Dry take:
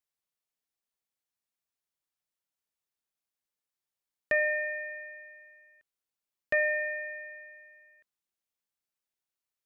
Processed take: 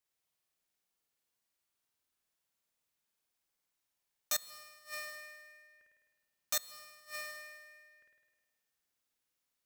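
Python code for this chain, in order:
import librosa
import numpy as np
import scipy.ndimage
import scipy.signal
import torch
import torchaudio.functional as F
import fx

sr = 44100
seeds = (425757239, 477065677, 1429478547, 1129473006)

y = (np.mod(10.0 ** (26.0 / 20.0) * x + 1.0, 2.0) - 1.0) / 10.0 ** (26.0 / 20.0)
y = fx.room_flutter(y, sr, wall_m=8.9, rt60_s=1.3)
y = fx.gate_flip(y, sr, shuts_db=-26.0, range_db=-26)
y = F.gain(torch.from_numpy(y), 1.5).numpy()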